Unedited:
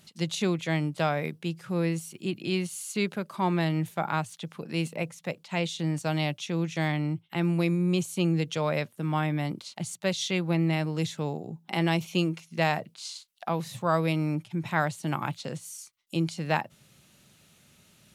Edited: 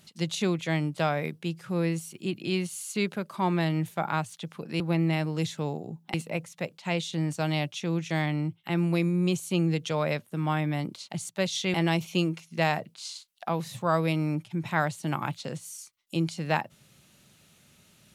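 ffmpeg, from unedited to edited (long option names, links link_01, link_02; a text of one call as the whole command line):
ffmpeg -i in.wav -filter_complex "[0:a]asplit=4[link_01][link_02][link_03][link_04];[link_01]atrim=end=4.802[link_05];[link_02]atrim=start=10.398:end=11.742[link_06];[link_03]atrim=start=4.798:end=10.402[link_07];[link_04]atrim=start=11.738[link_08];[link_05][link_06]acrossfade=duration=0.004:curve1=hsin:curve2=hsin[link_09];[link_09][link_07]acrossfade=duration=0.004:curve1=hsin:curve2=hsin[link_10];[link_10][link_08]acrossfade=duration=0.004:curve1=hsin:curve2=hsin" out.wav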